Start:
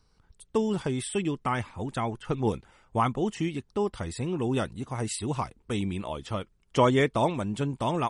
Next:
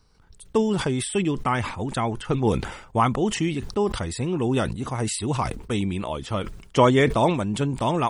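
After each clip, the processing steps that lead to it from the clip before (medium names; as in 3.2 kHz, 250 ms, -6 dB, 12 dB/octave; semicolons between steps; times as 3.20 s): decay stretcher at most 79 dB/s; trim +4.5 dB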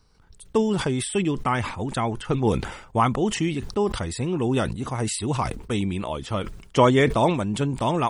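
no audible change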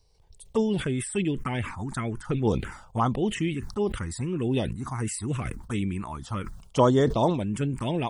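touch-sensitive phaser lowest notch 230 Hz, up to 2.4 kHz, full sweep at -15.5 dBFS; trim -2 dB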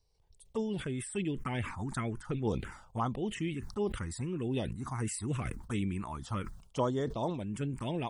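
gain riding within 4 dB 0.5 s; trim -8 dB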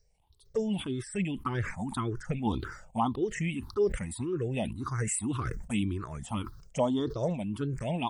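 drifting ripple filter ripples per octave 0.55, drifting +1.8 Hz, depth 17 dB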